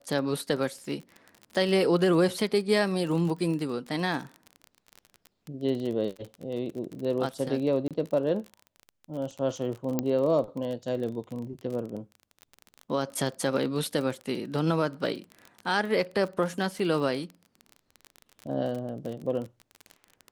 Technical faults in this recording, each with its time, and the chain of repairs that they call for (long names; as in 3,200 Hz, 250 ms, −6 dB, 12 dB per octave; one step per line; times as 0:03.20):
surface crackle 31 per second −33 dBFS
0:07.88–0:07.91: drop-out 27 ms
0:09.99: click −13 dBFS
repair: click removal
repair the gap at 0:07.88, 27 ms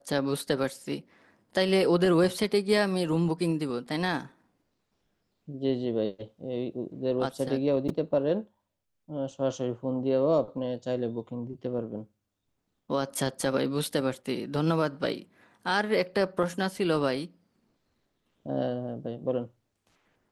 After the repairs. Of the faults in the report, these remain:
none of them is left